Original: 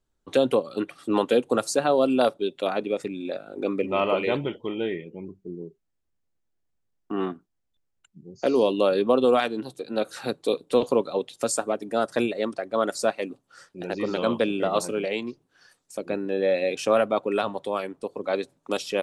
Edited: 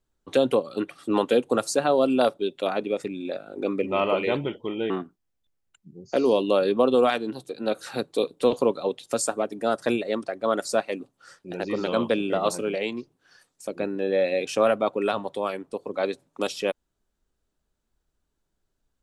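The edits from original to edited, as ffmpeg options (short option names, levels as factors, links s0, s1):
-filter_complex "[0:a]asplit=2[s0][s1];[s0]atrim=end=4.902[s2];[s1]atrim=start=7.198[s3];[s2][s3]acrossfade=d=0.004:c1=hsin:c2=hsin"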